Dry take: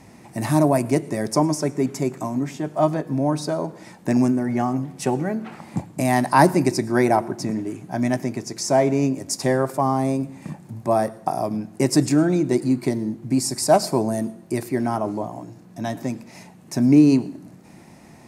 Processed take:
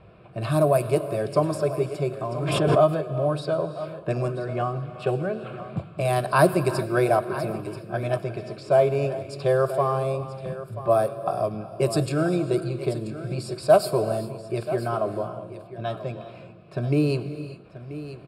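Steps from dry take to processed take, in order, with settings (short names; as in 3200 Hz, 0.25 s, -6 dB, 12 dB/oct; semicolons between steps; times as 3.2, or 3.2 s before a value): fixed phaser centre 1300 Hz, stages 8; low-pass opened by the level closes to 2300 Hz, open at -19 dBFS; echo 0.984 s -14 dB; on a send at -12.5 dB: reverb, pre-delay 3 ms; 2.29–3.02 on the sum: backwards sustainer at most 29 dB/s; gain +2 dB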